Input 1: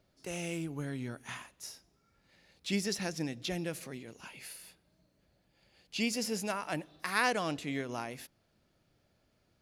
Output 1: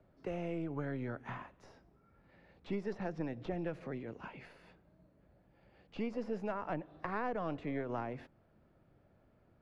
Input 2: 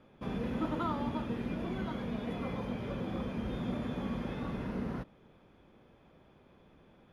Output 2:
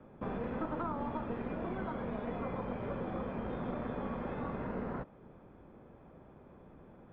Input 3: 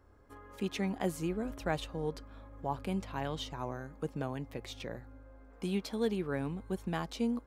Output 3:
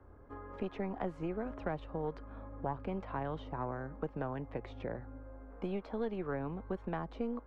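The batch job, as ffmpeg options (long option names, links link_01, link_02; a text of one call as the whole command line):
ffmpeg -i in.wav -filter_complex "[0:a]aeval=exprs='0.168*(cos(1*acos(clip(val(0)/0.168,-1,1)))-cos(1*PI/2))+0.0119*(cos(6*acos(clip(val(0)/0.168,-1,1)))-cos(6*PI/2))':channel_layout=same,acrossover=split=93|410|1100[link_01][link_02][link_03][link_04];[link_01]acompressor=threshold=-54dB:ratio=4[link_05];[link_02]acompressor=threshold=-48dB:ratio=4[link_06];[link_03]acompressor=threshold=-45dB:ratio=4[link_07];[link_04]acompressor=threshold=-47dB:ratio=4[link_08];[link_05][link_06][link_07][link_08]amix=inputs=4:normalize=0,lowpass=1400,volume=5.5dB" out.wav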